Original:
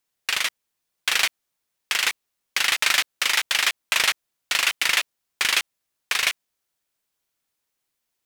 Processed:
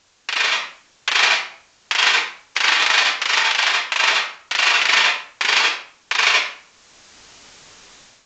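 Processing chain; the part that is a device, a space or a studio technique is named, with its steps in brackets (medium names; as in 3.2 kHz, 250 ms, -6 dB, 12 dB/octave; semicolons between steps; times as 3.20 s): filmed off a television (band-pass 230–6200 Hz; peaking EQ 930 Hz +5 dB 0.57 oct; reverberation RT60 0.50 s, pre-delay 69 ms, DRR -4 dB; white noise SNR 32 dB; level rider gain up to 14.5 dB; trim -1 dB; AAC 48 kbps 16 kHz)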